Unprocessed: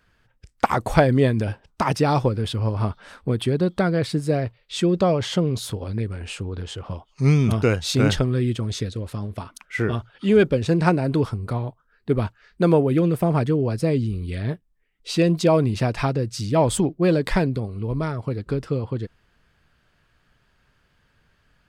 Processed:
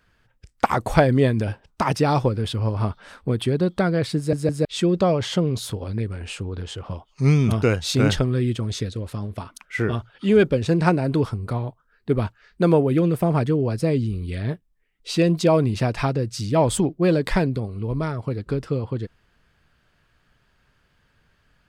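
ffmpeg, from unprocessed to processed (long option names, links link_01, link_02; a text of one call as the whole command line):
ffmpeg -i in.wav -filter_complex "[0:a]asplit=4[link_01][link_02][link_03][link_04];[link_01]atrim=end=4.332[link_05];[link_02]atrim=start=4.168:end=4.332[link_06];[link_03]atrim=start=4.168:end=4.332[link_07];[link_04]atrim=start=4.648[link_08];[link_05][link_06]acrossfade=duration=0.004:curve1=hsin:curve2=hsin[link_09];[link_09][link_07]acrossfade=duration=0.004:curve1=hsin:curve2=hsin[link_10];[link_10][link_08]acrossfade=duration=0.004:curve1=hsin:curve2=hsin" out.wav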